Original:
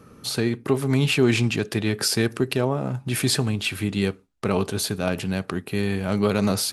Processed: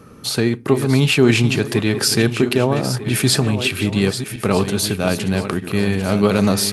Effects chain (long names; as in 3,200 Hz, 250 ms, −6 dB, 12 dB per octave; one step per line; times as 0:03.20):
feedback delay that plays each chunk backwards 623 ms, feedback 51%, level −10 dB
level +5.5 dB